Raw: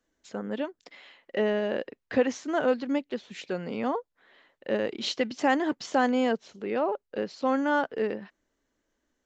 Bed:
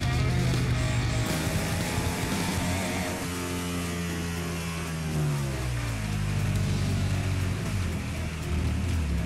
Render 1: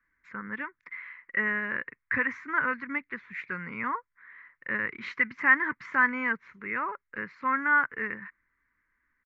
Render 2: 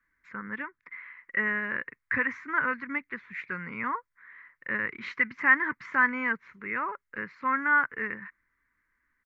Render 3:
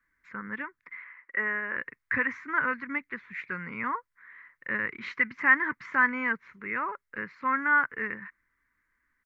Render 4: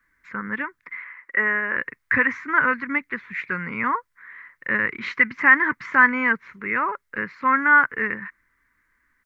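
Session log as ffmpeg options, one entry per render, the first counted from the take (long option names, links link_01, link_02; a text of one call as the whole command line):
ffmpeg -i in.wav -af "firequalizer=gain_entry='entry(130,0);entry(250,-9);entry(720,-21);entry(1000,5);entry(2100,13);entry(3000,-16);entry(5000,-21);entry(9300,-27)':delay=0.05:min_phase=1" out.wav
ffmpeg -i in.wav -filter_complex "[0:a]asettb=1/sr,asplit=3[link_01][link_02][link_03];[link_01]atrim=end=0.624[link_04];[link_02]atrim=start=0.62:end=1.17,asetpts=PTS-STARTPTS,afade=type=in:duration=0.004:curve=qsin,afade=type=out:start_time=0.546:duration=0.004:curve=qsin,highshelf=frequency=3800:gain=-10.5[link_05];[link_03]atrim=start=1.166[link_06];[link_04][link_05]acrossfade=duration=0.004:curve1=hsin:curve2=qsin[link_07];[link_07][link_06]acrossfade=duration=0.004:curve1=qsin:curve2=hsin" out.wav
ffmpeg -i in.wav -filter_complex "[0:a]asettb=1/sr,asplit=3[link_01][link_02][link_03];[link_01]atrim=end=1.044[link_04];[link_02]atrim=start=1.04:end=1.77,asetpts=PTS-STARTPTS,afade=type=in:duration=0.004:curve=qsin,afade=type=out:start_time=0.726:duration=0.004:curve=qsin,acrossover=split=250 2800:gain=0.158 1 0.126[link_05][link_06][link_07];[link_05][link_06][link_07]amix=inputs=3:normalize=0[link_08];[link_03]atrim=start=1.766[link_09];[link_04][link_08]acrossfade=duration=0.004:curve1=hsin:curve2=qsin[link_10];[link_10][link_09]acrossfade=duration=0.004:curve1=qsin:curve2=hsin" out.wav
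ffmpeg -i in.wav -af "volume=8dB,alimiter=limit=-3dB:level=0:latency=1" out.wav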